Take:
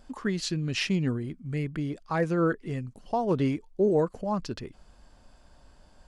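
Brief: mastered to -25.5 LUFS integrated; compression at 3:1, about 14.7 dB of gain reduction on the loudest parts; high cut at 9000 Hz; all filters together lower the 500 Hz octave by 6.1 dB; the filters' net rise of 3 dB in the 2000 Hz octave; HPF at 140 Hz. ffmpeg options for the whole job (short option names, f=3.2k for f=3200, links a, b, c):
-af "highpass=140,lowpass=9k,equalizer=f=500:t=o:g=-8,equalizer=f=2k:t=o:g=4.5,acompressor=threshold=-45dB:ratio=3,volume=19dB"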